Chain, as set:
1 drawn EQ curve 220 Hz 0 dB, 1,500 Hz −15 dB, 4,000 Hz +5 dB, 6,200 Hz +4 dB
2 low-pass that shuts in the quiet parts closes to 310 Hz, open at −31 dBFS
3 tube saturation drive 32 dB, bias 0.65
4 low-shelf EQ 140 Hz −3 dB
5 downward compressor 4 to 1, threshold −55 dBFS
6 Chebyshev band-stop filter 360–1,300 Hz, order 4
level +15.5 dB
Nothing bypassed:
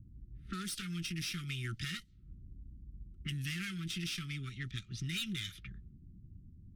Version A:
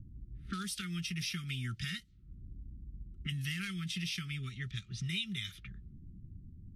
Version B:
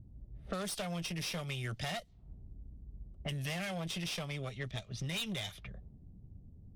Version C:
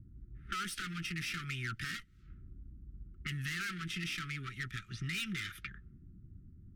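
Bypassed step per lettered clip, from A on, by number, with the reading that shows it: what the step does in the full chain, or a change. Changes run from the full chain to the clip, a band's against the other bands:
3, change in crest factor +1.5 dB
6, 500 Hz band +14.5 dB
1, 1 kHz band +9.5 dB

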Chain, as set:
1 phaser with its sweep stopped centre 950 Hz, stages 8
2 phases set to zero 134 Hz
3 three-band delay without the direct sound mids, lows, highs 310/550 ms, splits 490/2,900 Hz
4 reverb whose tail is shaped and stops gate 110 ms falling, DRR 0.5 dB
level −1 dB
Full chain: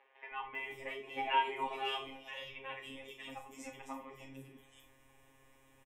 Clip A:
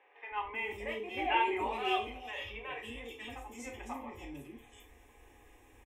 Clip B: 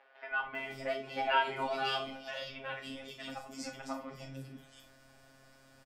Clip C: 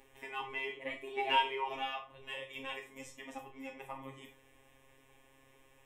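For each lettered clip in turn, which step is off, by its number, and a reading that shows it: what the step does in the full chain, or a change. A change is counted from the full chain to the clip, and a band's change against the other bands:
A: 2, 250 Hz band +4.0 dB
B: 1, 1 kHz band −4.0 dB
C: 3, change in crest factor +1.5 dB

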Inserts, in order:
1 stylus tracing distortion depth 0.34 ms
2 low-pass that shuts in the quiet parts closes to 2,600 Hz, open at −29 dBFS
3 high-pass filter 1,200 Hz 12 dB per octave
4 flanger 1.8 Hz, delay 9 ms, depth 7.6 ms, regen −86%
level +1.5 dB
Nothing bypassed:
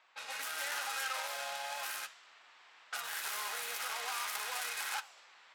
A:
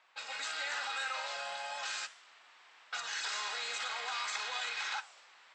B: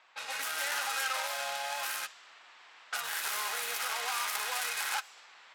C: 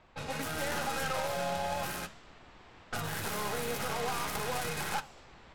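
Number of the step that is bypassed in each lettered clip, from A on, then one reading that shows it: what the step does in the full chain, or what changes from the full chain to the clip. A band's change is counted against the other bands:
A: 1, change in crest factor −3.0 dB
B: 4, change in integrated loudness +4.5 LU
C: 3, 500 Hz band +13.0 dB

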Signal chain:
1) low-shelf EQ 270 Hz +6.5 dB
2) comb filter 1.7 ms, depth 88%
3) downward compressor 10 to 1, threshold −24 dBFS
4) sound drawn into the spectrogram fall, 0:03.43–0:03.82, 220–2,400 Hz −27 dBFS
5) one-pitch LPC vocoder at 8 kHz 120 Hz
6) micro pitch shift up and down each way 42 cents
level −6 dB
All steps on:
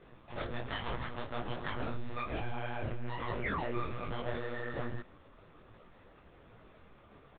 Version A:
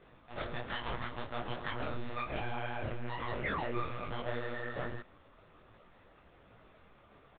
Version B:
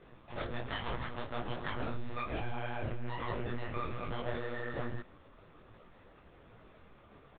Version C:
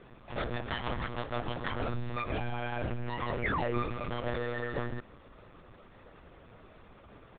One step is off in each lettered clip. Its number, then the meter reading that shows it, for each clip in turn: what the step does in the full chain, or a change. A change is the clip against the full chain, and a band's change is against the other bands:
1, 125 Hz band −2.5 dB
4, change in momentary loudness spread −2 LU
6, change in crest factor +3.5 dB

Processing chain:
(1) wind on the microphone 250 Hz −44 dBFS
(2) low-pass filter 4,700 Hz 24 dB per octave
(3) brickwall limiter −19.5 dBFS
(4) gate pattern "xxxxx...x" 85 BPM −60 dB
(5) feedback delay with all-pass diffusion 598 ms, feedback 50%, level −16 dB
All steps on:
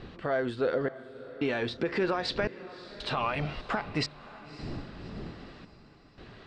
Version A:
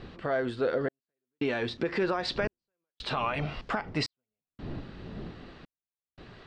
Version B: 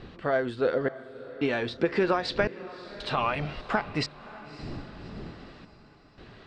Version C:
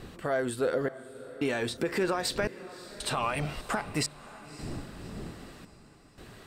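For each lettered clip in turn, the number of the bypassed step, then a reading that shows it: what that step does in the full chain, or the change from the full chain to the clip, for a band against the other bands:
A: 5, echo-to-direct ratio −15.0 dB to none audible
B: 3, change in crest factor +4.0 dB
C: 2, 8 kHz band +14.5 dB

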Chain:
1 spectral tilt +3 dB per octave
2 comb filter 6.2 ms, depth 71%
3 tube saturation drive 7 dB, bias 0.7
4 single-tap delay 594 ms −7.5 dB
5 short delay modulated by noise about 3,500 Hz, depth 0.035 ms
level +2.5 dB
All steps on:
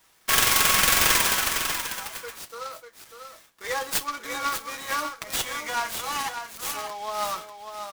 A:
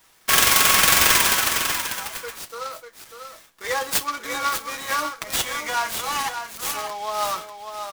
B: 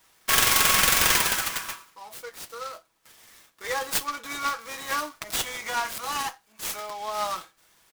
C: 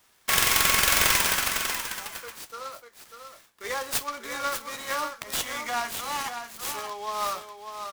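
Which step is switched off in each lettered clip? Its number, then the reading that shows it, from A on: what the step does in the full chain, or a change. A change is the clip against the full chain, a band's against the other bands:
3, change in crest factor −2.0 dB
4, change in momentary loudness spread +1 LU
2, change in integrated loudness −1.5 LU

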